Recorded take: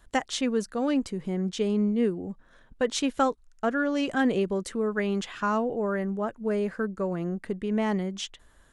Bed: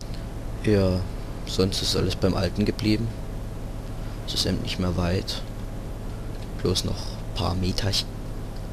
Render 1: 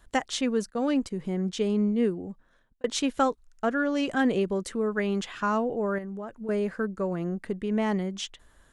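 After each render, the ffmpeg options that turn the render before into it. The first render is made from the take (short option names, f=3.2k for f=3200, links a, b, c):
-filter_complex "[0:a]asplit=3[a][b][c];[a]afade=t=out:st=0.69:d=0.02[d];[b]agate=range=-16dB:threshold=-40dB:ratio=16:release=100:detection=peak,afade=t=in:st=0.69:d=0.02,afade=t=out:st=1.1:d=0.02[e];[c]afade=t=in:st=1.1:d=0.02[f];[d][e][f]amix=inputs=3:normalize=0,asettb=1/sr,asplit=3[g][h][i];[g]atrim=end=5.984[j];[h]atrim=start=5.98:end=6.49,asetpts=PTS-STARTPTS,afade=t=in:d=0.004:c=qsin,afade=t=out:st=0.506:d=0.004:c=qsin,acompressor=threshold=-33dB:ratio=6:attack=3.2:release=140:knee=1:detection=peak[k];[i]atrim=start=6.486[l];[j][k]acrossfade=d=0.004:c1=hsin:c2=qsin[m];[m][l]acrossfade=d=0.004:c1=qsin:c2=hsin,asplit=2[n][o];[n]atrim=end=2.84,asetpts=PTS-STARTPTS,afade=t=out:st=2.11:d=0.73[p];[o]atrim=start=2.84,asetpts=PTS-STARTPTS,afade=t=in:d=0.004:c=hsin[q];[p][q]concat=n=2:v=0:a=1"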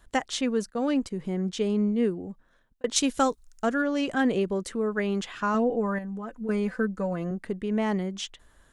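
-filter_complex "[0:a]asettb=1/sr,asplit=3[a][b][c];[a]atrim=end=2.964[d];[b]atrim=start=2.96:end=3.82,asetpts=PTS-STARTPTS,afade=t=in:d=0.004:c=qsin,afade=t=out:st=0.856:d=0.004:c=qsin,bass=f=250:g=3,treble=f=4k:g=10[e];[c]atrim=start=3.816[f];[d][e]acrossfade=d=0.004:c1=hsin:c2=qsin[g];[g][f]acrossfade=d=0.004:c1=qsin:c2=hsin,asettb=1/sr,asplit=3[h][i][j];[h]atrim=end=5.544[k];[i]atrim=start=5.54:end=7.31,asetpts=PTS-STARTPTS,afade=t=in:d=0.004:c=qsin,afade=t=out:st=1.766:d=0.004:c=qsin,aecho=1:1:4:0.7,atrim=end_sample=78057[l];[j]atrim=start=7.306[m];[k][l]acrossfade=d=0.004:c1=hsin:c2=qsin[n];[n][m]acrossfade=d=0.004:c1=qsin:c2=hsin"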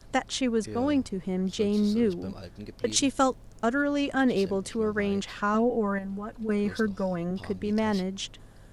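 -filter_complex "[1:a]volume=-18dB[a];[0:a][a]amix=inputs=2:normalize=0"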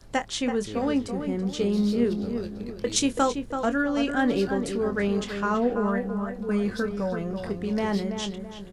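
-filter_complex "[0:a]asplit=2[a][b];[b]adelay=25,volume=-10dB[c];[a][c]amix=inputs=2:normalize=0,asplit=2[d][e];[e]adelay=331,lowpass=f=2.1k:p=1,volume=-7dB,asplit=2[f][g];[g]adelay=331,lowpass=f=2.1k:p=1,volume=0.4,asplit=2[h][i];[i]adelay=331,lowpass=f=2.1k:p=1,volume=0.4,asplit=2[j][k];[k]adelay=331,lowpass=f=2.1k:p=1,volume=0.4,asplit=2[l][m];[m]adelay=331,lowpass=f=2.1k:p=1,volume=0.4[n];[d][f][h][j][l][n]amix=inputs=6:normalize=0"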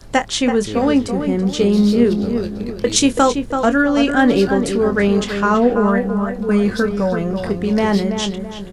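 -af "volume=10dB,alimiter=limit=-2dB:level=0:latency=1"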